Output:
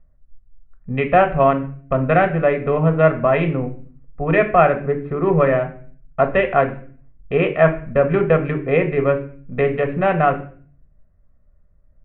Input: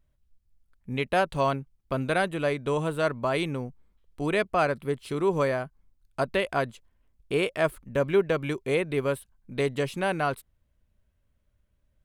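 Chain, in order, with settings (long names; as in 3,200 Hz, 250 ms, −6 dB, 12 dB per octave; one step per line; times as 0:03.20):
adaptive Wiener filter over 15 samples
Butterworth low-pass 2,600 Hz 36 dB per octave
convolution reverb RT60 0.45 s, pre-delay 3 ms, DRR 6 dB
level +4 dB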